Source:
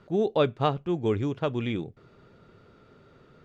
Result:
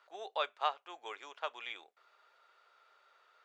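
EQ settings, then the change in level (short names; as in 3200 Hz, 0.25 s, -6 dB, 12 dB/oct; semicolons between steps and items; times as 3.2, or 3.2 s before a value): HPF 760 Hz 24 dB/oct; -4.0 dB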